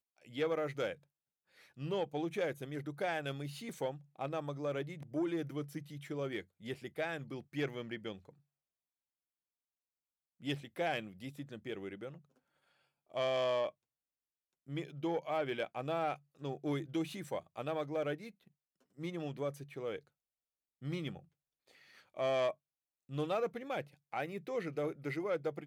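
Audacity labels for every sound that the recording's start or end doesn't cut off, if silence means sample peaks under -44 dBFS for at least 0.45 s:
1.790000	8.290000	sound
10.440000	12.110000	sound
13.140000	13.700000	sound
14.690000	18.290000	sound
18.990000	19.990000	sound
20.830000	21.190000	sound
22.170000	22.520000	sound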